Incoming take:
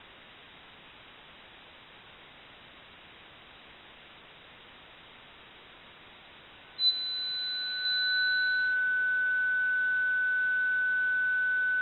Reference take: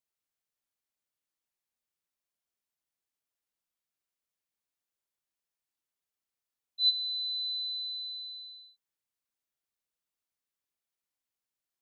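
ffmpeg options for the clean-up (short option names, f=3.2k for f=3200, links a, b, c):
-af "bandreject=f=1.5k:w=30,afwtdn=0.0056,asetnsamples=n=441:p=0,asendcmd='7.85 volume volume -7.5dB',volume=0dB"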